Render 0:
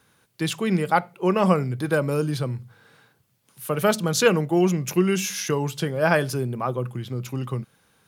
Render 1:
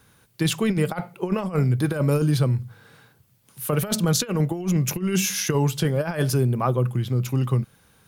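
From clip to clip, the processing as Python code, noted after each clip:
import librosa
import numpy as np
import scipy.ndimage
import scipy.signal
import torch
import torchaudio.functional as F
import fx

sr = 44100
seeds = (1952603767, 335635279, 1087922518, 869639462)

y = fx.high_shelf(x, sr, hz=11000.0, db=6.0)
y = fx.over_compress(y, sr, threshold_db=-23.0, ratio=-0.5)
y = fx.low_shelf(y, sr, hz=110.0, db=12.0)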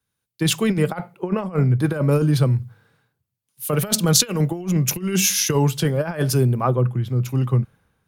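y = fx.band_widen(x, sr, depth_pct=70)
y = F.gain(torch.from_numpy(y), 2.5).numpy()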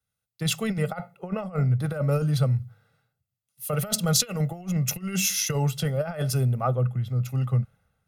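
y = x + 0.73 * np.pad(x, (int(1.5 * sr / 1000.0), 0))[:len(x)]
y = F.gain(torch.from_numpy(y), -7.5).numpy()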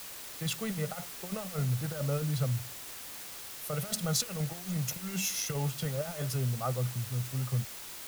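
y = fx.quant_dither(x, sr, seeds[0], bits=6, dither='triangular')
y = F.gain(torch.from_numpy(y), -8.0).numpy()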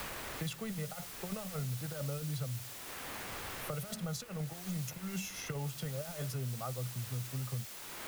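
y = fx.band_squash(x, sr, depth_pct=100)
y = F.gain(torch.from_numpy(y), -6.5).numpy()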